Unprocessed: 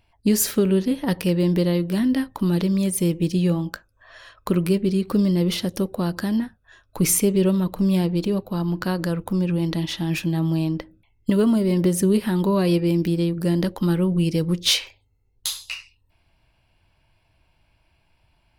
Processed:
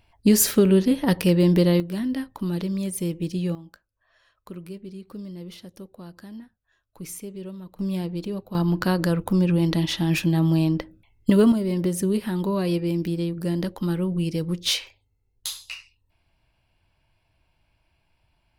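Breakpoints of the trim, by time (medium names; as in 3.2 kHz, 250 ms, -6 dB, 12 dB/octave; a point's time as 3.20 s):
+2 dB
from 1.80 s -6 dB
from 3.55 s -17.5 dB
from 7.79 s -7.5 dB
from 8.55 s +2 dB
from 11.52 s -4.5 dB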